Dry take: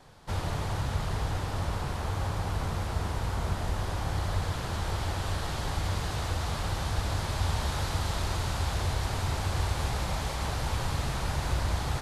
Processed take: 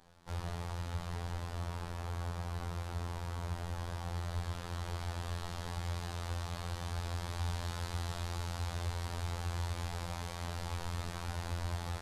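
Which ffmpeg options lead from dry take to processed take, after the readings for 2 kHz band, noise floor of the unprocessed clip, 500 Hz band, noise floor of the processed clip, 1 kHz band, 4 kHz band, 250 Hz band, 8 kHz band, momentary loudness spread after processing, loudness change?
-9.0 dB, -34 dBFS, -9.0 dB, -43 dBFS, -9.0 dB, -9.0 dB, -8.5 dB, -9.0 dB, 3 LU, -8.0 dB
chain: -af "afftfilt=real='hypot(re,im)*cos(PI*b)':imag='0':win_size=2048:overlap=0.75,volume=-5.5dB"

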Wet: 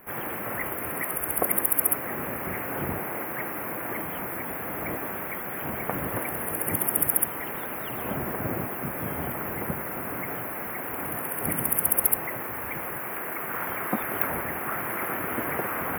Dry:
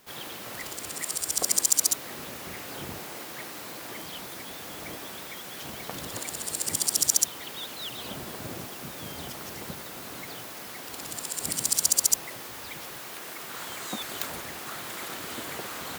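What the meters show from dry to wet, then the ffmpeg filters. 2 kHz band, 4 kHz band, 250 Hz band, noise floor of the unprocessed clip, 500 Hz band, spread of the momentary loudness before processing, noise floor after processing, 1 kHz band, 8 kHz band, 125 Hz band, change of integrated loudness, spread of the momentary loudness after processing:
+7.0 dB, -16.0 dB, +8.5 dB, -41 dBFS, +8.5 dB, 16 LU, -34 dBFS, +8.5 dB, -6.5 dB, +8.5 dB, +2.0 dB, 10 LU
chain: -af "asuperstop=centerf=5400:order=8:qfactor=0.61,volume=8.5dB"

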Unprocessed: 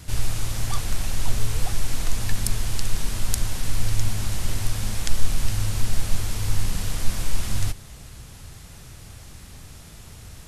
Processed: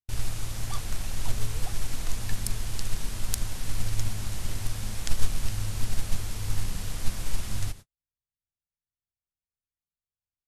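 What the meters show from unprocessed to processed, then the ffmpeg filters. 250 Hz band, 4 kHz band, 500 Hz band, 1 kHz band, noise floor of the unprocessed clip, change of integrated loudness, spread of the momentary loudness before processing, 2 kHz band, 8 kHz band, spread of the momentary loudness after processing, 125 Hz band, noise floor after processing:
-5.5 dB, -5.5 dB, -5.5 dB, -5.5 dB, -44 dBFS, -5.5 dB, 16 LU, -5.5 dB, -5.5 dB, 3 LU, -5.5 dB, under -85 dBFS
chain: -af "agate=range=-54dB:threshold=-31dB:ratio=16:detection=peak,aeval=exprs='0.891*(cos(1*acos(clip(val(0)/0.891,-1,1)))-cos(1*PI/2))+0.141*(cos(3*acos(clip(val(0)/0.891,-1,1)))-cos(3*PI/2))':c=same,volume=-1dB"

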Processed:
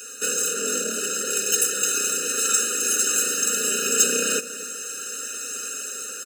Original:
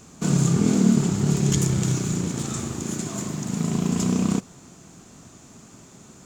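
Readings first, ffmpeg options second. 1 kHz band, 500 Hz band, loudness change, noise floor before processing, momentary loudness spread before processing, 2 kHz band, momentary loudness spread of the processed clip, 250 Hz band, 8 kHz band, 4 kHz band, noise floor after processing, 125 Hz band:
+3.0 dB, +2.0 dB, +1.5 dB, -49 dBFS, 10 LU, +11.5 dB, 11 LU, -15.5 dB, +12.0 dB, +9.0 dB, -35 dBFS, under -25 dB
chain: -filter_complex "[0:a]highshelf=f=5.7k:g=7,asplit=2[a][b];[b]acompressor=threshold=-29dB:ratio=6,volume=-2dB[c];[a][c]amix=inputs=2:normalize=0,asoftclip=type=tanh:threshold=-15dB,highpass=f=430:w=0.5412,highpass=f=430:w=1.3066,equalizer=f=1.6k:t=o:w=1.9:g=7.5,asplit=2[d][e];[e]adelay=244,lowpass=f=2k:p=1,volume=-14dB,asplit=2[f][g];[g]adelay=244,lowpass=f=2k:p=1,volume=0.36,asplit=2[h][i];[i]adelay=244,lowpass=f=2k:p=1,volume=0.36[j];[d][f][h][j]amix=inputs=4:normalize=0,asoftclip=type=hard:threshold=-18dB,asuperstop=centerf=760:order=4:qfactor=3.3,aecho=1:1:4.3:0.83,aexciter=amount=1.5:drive=5.3:freq=2.4k,dynaudnorm=f=310:g=9:m=11.5dB,afftfilt=real='re*eq(mod(floor(b*sr/1024/610),2),0)':imag='im*eq(mod(floor(b*sr/1024/610),2),0)':win_size=1024:overlap=0.75"

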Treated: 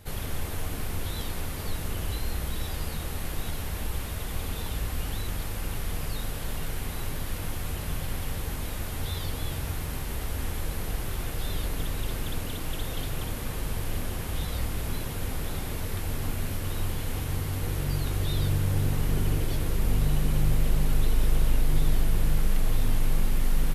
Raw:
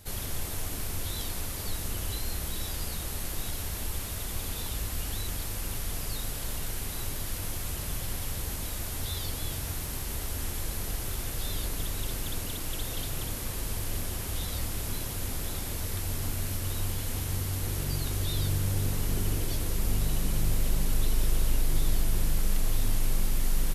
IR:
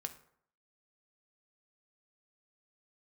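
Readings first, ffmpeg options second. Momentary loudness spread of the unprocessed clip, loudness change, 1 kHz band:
4 LU, +1.0 dB, +3.5 dB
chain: -filter_complex "[0:a]asplit=2[a][b];[1:a]atrim=start_sample=2205,lowpass=3.8k[c];[b][c]afir=irnorm=-1:irlink=0,volume=4dB[d];[a][d]amix=inputs=2:normalize=0,volume=-3.5dB"

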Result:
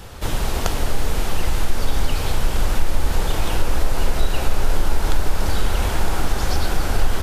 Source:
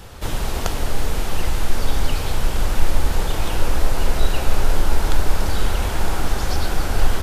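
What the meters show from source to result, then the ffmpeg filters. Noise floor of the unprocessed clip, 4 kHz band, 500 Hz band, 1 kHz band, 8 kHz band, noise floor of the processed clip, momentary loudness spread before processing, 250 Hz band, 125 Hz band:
-26 dBFS, 0.0 dB, 0.0 dB, 0.0 dB, 0.0 dB, -24 dBFS, 3 LU, 0.0 dB, 0.0 dB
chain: -af "acompressor=threshold=-13dB:ratio=2,volume=1.5dB"

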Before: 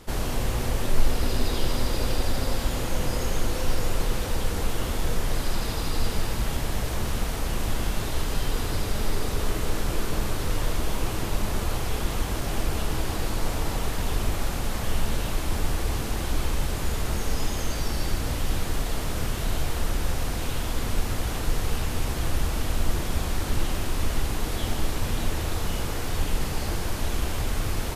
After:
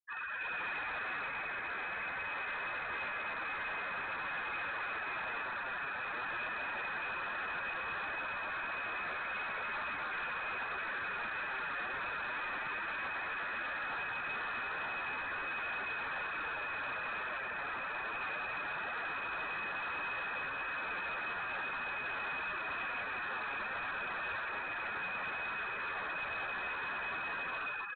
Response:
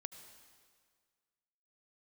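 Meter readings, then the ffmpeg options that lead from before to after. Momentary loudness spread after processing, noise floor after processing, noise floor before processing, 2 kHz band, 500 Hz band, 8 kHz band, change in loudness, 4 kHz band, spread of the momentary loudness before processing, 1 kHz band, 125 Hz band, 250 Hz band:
1 LU, -40 dBFS, -30 dBFS, +2.5 dB, -14.0 dB, under -40 dB, -7.5 dB, -14.5 dB, 2 LU, -3.5 dB, -30.5 dB, -21.5 dB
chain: -af "highpass=f=41:w=0.5412,highpass=f=41:w=1.3066,dynaudnorm=f=170:g=7:m=6.5dB,lowshelf=f=680:t=q:w=1.5:g=-11.5,afftfilt=real='re*gte(hypot(re,im),0.0398)':imag='im*gte(hypot(re,im),0.0398)':win_size=1024:overlap=0.75,bandreject=f=176.3:t=h:w=4,bandreject=f=352.6:t=h:w=4,bandreject=f=528.9:t=h:w=4,bandreject=f=705.2:t=h:w=4,bandreject=f=881.5:t=h:w=4,bandreject=f=1.0578k:t=h:w=4,bandreject=f=1.2341k:t=h:w=4,bandreject=f=1.4104k:t=h:w=4,bandreject=f=1.5867k:t=h:w=4,bandreject=f=1.763k:t=h:w=4,bandreject=f=1.9393k:t=h:w=4,bandreject=f=2.1156k:t=h:w=4,bandreject=f=2.2919k:t=h:w=4,bandreject=f=2.4682k:t=h:w=4,bandreject=f=2.6445k:t=h:w=4,bandreject=f=2.8208k:t=h:w=4,bandreject=f=2.9971k:t=h:w=4,bandreject=f=3.1734k:t=h:w=4,bandreject=f=3.3497k:t=h:w=4,bandreject=f=3.526k:t=h:w=4,bandreject=f=3.7023k:t=h:w=4,bandreject=f=3.8786k:t=h:w=4,bandreject=f=4.0549k:t=h:w=4,bandreject=f=4.2312k:t=h:w=4,bandreject=f=4.4075k:t=h:w=4,bandreject=f=4.5838k:t=h:w=4,bandreject=f=4.7601k:t=h:w=4,bandreject=f=4.9364k:t=h:w=4,bandreject=f=5.1127k:t=h:w=4,bandreject=f=5.289k:t=h:w=4,bandreject=f=5.4653k:t=h:w=4,bandreject=f=5.6416k:t=h:w=4,bandreject=f=5.8179k:t=h:w=4,bandreject=f=5.9942k:t=h:w=4,bandreject=f=6.1705k:t=h:w=4,bandreject=f=6.3468k:t=h:w=4,bandreject=f=6.5231k:t=h:w=4,bandreject=f=6.6994k:t=h:w=4,flanger=delay=7.3:depth=6.5:regen=5:speed=0.17:shape=triangular,alimiter=level_in=5dB:limit=-24dB:level=0:latency=1:release=54,volume=-5dB,lowpass=f=2.2k:t=q:w=0.5098,lowpass=f=2.2k:t=q:w=0.6013,lowpass=f=2.2k:t=q:w=0.9,lowpass=f=2.2k:t=q:w=2.563,afreqshift=-2600,aresample=8000,asoftclip=type=tanh:threshold=-38dB,aresample=44100,volume=3.5dB"

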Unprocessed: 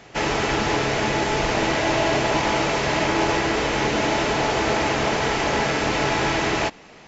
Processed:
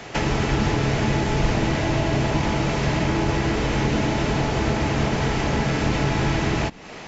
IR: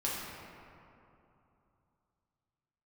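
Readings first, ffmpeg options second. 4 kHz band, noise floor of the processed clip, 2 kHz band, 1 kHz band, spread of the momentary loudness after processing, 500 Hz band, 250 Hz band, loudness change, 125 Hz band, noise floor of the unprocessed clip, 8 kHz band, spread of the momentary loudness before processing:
-4.5 dB, -38 dBFS, -4.5 dB, -4.5 dB, 1 LU, -3.0 dB, +2.5 dB, -1.0 dB, +7.5 dB, -46 dBFS, n/a, 1 LU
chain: -filter_complex "[0:a]acrossover=split=230[a][b];[b]acompressor=threshold=-33dB:ratio=8[c];[a][c]amix=inputs=2:normalize=0,volume=8.5dB"

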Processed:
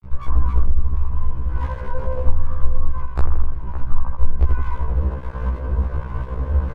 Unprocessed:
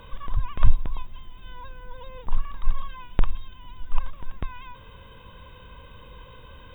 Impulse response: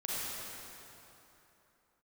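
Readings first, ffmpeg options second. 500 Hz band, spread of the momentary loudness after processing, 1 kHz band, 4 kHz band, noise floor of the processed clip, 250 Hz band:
+13.0 dB, 6 LU, +6.5 dB, n/a, -31 dBFS, +9.5 dB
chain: -filter_complex "[0:a]dynaudnorm=f=210:g=3:m=8dB,asplit=2[a][b];[1:a]atrim=start_sample=2205,adelay=128[c];[b][c]afir=irnorm=-1:irlink=0,volume=-27.5dB[d];[a][d]amix=inputs=2:normalize=0,acrossover=split=650[e][f];[e]aeval=exprs='val(0)*(1-0.5/2+0.5/2*cos(2*PI*1.4*n/s))':c=same[g];[f]aeval=exprs='val(0)*(1-0.5/2-0.5/2*cos(2*PI*1.4*n/s))':c=same[h];[g][h]amix=inputs=2:normalize=0,lowpass=f=1.5k:w=0.5412,lowpass=f=1.5k:w=1.3066,asplit=2[i][j];[j]aecho=0:1:82|164|246|328|410|492:0.501|0.256|0.13|0.0665|0.0339|0.0173[k];[i][k]amix=inputs=2:normalize=0,adynamicequalizer=threshold=0.00224:dfrequency=430:dqfactor=2.4:tfrequency=430:tqfactor=2.4:attack=5:release=100:ratio=0.375:range=3:mode=boostabove:tftype=bell,acompressor=threshold=-31dB:ratio=2,lowshelf=f=100:t=q:w=3:g=9.5,aecho=1:1:562:0.211,aeval=exprs='sgn(val(0))*max(abs(val(0))-0.0266,0)':c=same,alimiter=level_in=13dB:limit=-1dB:release=50:level=0:latency=1,afftfilt=real='re*1.73*eq(mod(b,3),0)':imag='im*1.73*eq(mod(b,3),0)':win_size=2048:overlap=0.75,volume=-1.5dB"

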